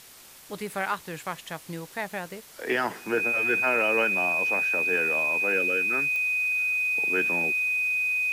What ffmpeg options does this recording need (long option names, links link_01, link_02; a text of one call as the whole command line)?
ffmpeg -i in.wav -af "adeclick=threshold=4,bandreject=frequency=2500:width=30,afwtdn=0.004" out.wav